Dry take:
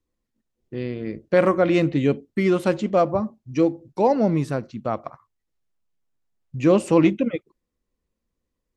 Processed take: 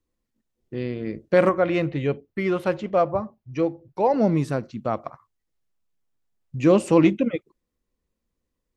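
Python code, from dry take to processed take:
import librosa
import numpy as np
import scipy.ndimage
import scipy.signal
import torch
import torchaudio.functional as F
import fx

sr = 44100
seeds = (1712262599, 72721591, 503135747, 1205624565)

y = fx.graphic_eq(x, sr, hz=(250, 4000, 8000), db=(-9, -3, -12), at=(1.49, 4.14))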